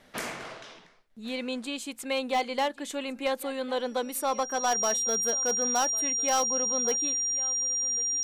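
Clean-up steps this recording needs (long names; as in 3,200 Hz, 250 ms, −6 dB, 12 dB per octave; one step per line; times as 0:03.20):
clipped peaks rebuilt −20 dBFS
notch filter 5,700 Hz, Q 30
echo removal 1,100 ms −20.5 dB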